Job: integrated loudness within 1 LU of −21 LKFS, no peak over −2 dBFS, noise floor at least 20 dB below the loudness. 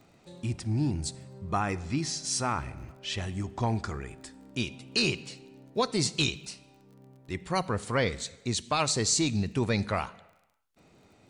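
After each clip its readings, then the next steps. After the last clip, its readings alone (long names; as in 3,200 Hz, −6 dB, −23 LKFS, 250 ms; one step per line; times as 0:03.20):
crackle rate 27 per second; integrated loudness −30.0 LKFS; sample peak −15.0 dBFS; target loudness −21.0 LKFS
→ click removal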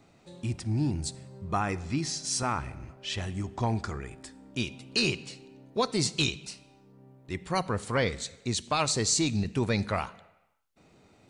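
crackle rate 0.18 per second; integrated loudness −30.0 LKFS; sample peak −15.0 dBFS; target loudness −21.0 LKFS
→ level +9 dB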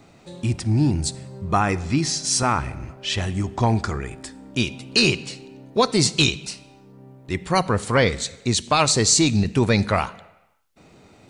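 integrated loudness −21.0 LKFS; sample peak −6.0 dBFS; background noise floor −52 dBFS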